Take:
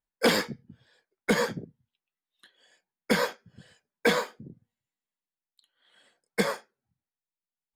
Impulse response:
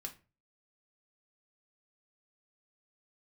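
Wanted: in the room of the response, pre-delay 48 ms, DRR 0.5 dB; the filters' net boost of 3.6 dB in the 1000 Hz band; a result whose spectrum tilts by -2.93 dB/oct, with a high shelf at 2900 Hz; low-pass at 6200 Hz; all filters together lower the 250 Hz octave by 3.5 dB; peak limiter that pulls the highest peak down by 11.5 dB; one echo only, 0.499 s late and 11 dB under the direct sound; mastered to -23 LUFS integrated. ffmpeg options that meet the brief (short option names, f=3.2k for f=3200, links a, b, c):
-filter_complex "[0:a]lowpass=6.2k,equalizer=f=250:t=o:g=-4.5,equalizer=f=1k:t=o:g=5.5,highshelf=f=2.9k:g=-8,alimiter=limit=-21.5dB:level=0:latency=1,aecho=1:1:499:0.282,asplit=2[a][b];[1:a]atrim=start_sample=2205,adelay=48[c];[b][c]afir=irnorm=-1:irlink=0,volume=2.5dB[d];[a][d]amix=inputs=2:normalize=0,volume=11.5dB"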